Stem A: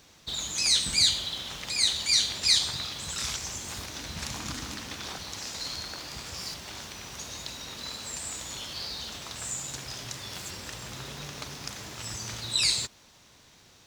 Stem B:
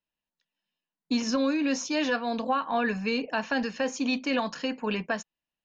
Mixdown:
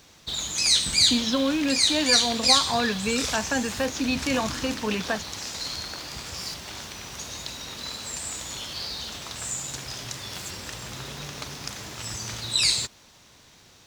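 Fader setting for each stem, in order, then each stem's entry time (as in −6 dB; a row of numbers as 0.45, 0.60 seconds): +3.0, +1.5 decibels; 0.00, 0.00 seconds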